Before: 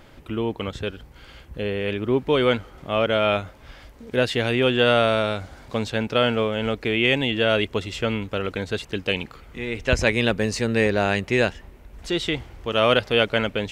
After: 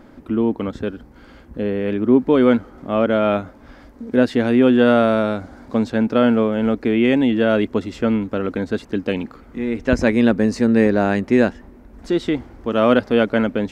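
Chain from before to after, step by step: FFT filter 140 Hz 0 dB, 250 Hz +14 dB, 400 Hz +5 dB, 1.6 kHz +2 dB, 2.9 kHz -8 dB, 4.9 kHz -3 dB, 7.8 kHz -5 dB; trim -1 dB

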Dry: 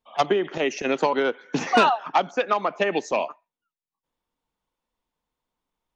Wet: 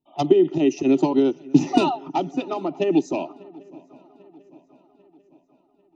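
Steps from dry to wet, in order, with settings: resonant low shelf 460 Hz +11.5 dB, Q 1.5; static phaser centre 320 Hz, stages 8; comb of notches 1.1 kHz; shuffle delay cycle 794 ms, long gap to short 3:1, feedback 49%, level -23.5 dB; tape noise reduction on one side only decoder only

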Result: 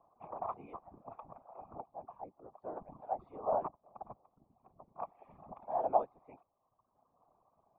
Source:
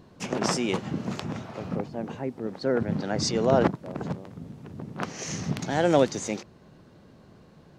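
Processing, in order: cascade formant filter a; reverb removal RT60 1.3 s; whisper effect; trim +1 dB

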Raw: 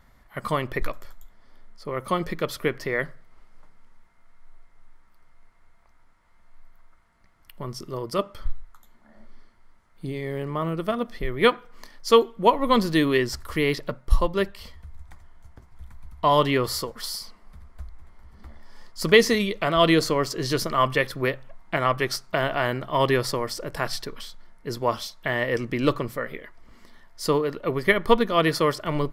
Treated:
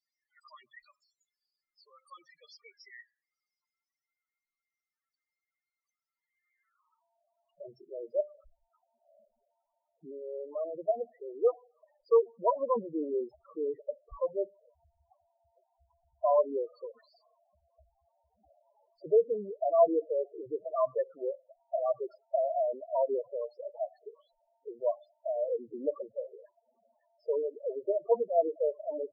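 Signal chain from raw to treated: band-pass sweep 5.8 kHz -> 650 Hz, 6.09–7.11 s; loudest bins only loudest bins 4

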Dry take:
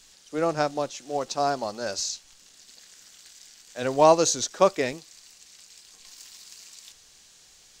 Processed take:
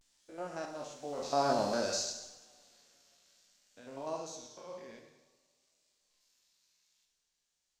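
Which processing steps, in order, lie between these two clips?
spectrogram pixelated in time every 100 ms; Doppler pass-by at 1.64 s, 13 m/s, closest 2.6 m; two-slope reverb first 0.97 s, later 3.3 s, from -25 dB, DRR 2 dB; vibrato 0.56 Hz 73 cents

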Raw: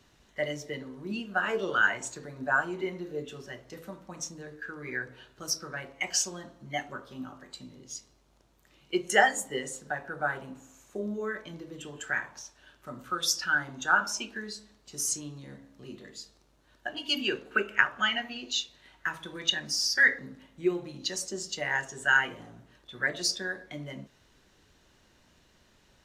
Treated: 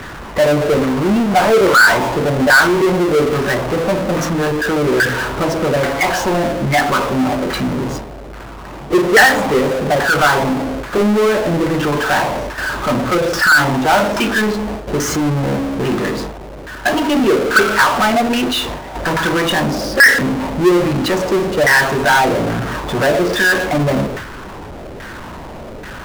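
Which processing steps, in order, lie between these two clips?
LFO low-pass saw down 1.2 Hz 490–1800 Hz; gate with hold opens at -49 dBFS; power-law waveshaper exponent 0.35; trim +1.5 dB

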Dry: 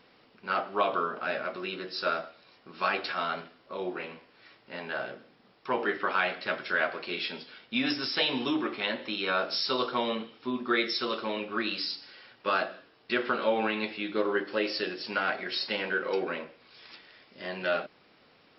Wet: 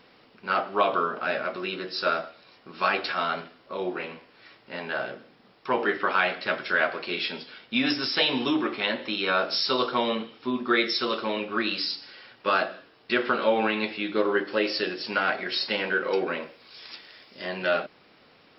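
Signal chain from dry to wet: 16.42–17.45 s: tone controls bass -2 dB, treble +8 dB; trim +4 dB

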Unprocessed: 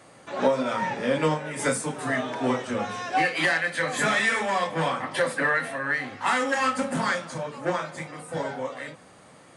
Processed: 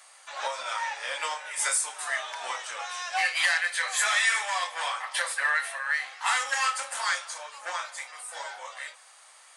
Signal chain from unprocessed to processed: high-pass 770 Hz 24 dB/octave; treble shelf 2.9 kHz +11.5 dB; trim -4 dB

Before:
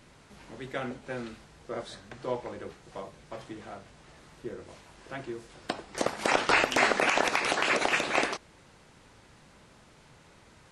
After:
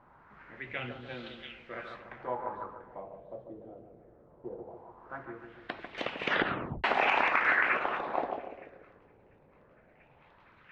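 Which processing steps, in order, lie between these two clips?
3.77–5.25 s: block-companded coder 3-bit; two-band feedback delay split 1.7 kHz, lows 145 ms, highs 690 ms, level -6 dB; 6.11 s: tape stop 0.73 s; LFO low-pass sine 0.19 Hz 470–3100 Hz; 0.69–1.14 s: peaking EQ 110 Hz +14.5 dB 0.57 oct; sweeping bell 0.43 Hz 830–3800 Hz +10 dB; trim -8.5 dB

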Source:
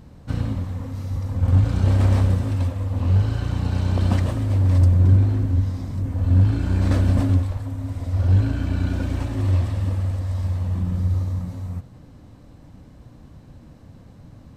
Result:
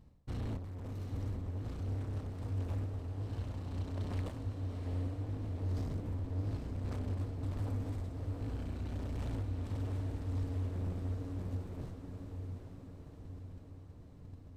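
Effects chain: gate -39 dBFS, range -21 dB; bass shelf 63 Hz +8.5 dB; band-stop 1.5 kHz, Q 8.9; reverse; compression 10:1, threshold -32 dBFS, peak gain reduction 23.5 dB; reverse; hard clipper -40 dBFS, distortion -7 dB; random-step tremolo; on a send: echo that smears into a reverb 760 ms, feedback 61%, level -5.5 dB; on the sum: trim +5 dB

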